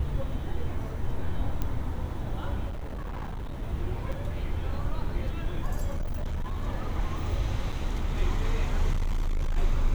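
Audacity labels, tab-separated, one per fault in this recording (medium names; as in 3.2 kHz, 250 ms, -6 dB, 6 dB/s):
1.620000	1.620000	pop -17 dBFS
2.690000	3.630000	clipped -31.5 dBFS
4.120000	4.130000	dropout 5.9 ms
5.950000	6.610000	clipped -26.5 dBFS
7.720000	7.730000	dropout 6.4 ms
8.920000	9.580000	clipped -23.5 dBFS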